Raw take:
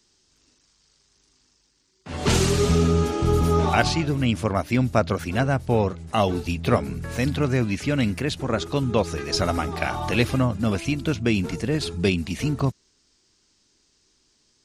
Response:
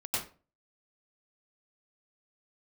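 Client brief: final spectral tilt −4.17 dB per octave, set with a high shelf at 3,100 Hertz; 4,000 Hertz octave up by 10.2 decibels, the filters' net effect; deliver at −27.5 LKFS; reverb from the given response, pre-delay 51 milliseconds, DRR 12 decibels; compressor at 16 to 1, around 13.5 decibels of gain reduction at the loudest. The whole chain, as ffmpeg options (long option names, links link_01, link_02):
-filter_complex "[0:a]highshelf=frequency=3100:gain=7.5,equalizer=frequency=4000:width_type=o:gain=7,acompressor=threshold=-24dB:ratio=16,asplit=2[link_01][link_02];[1:a]atrim=start_sample=2205,adelay=51[link_03];[link_02][link_03]afir=irnorm=-1:irlink=0,volume=-17.5dB[link_04];[link_01][link_04]amix=inputs=2:normalize=0,volume=1dB"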